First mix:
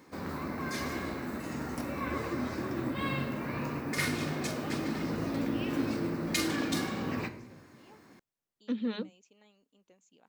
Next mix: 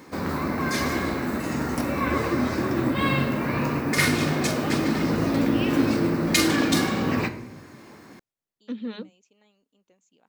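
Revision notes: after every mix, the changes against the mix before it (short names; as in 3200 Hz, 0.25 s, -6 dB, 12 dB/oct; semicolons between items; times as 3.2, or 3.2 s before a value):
background +10.0 dB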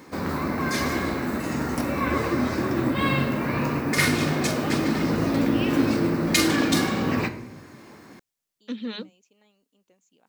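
second voice: add high shelf 2300 Hz +11.5 dB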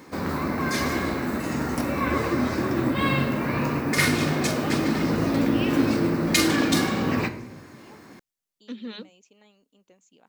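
first voice +5.5 dB; second voice -4.0 dB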